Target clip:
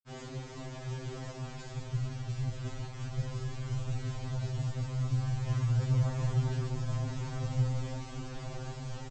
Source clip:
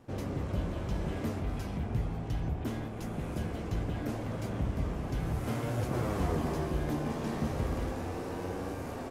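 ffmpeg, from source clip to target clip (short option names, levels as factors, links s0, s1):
-filter_complex "[0:a]asplit=2[s0][s1];[s1]asetrate=35002,aresample=44100,atempo=1.25992,volume=0.794[s2];[s0][s2]amix=inputs=2:normalize=0,asubboost=boost=12:cutoff=85,aresample=16000,acrusher=bits=6:mix=0:aa=0.000001,aresample=44100,afftfilt=real='re*2.45*eq(mod(b,6),0)':imag='im*2.45*eq(mod(b,6),0)':win_size=2048:overlap=0.75,volume=0.562"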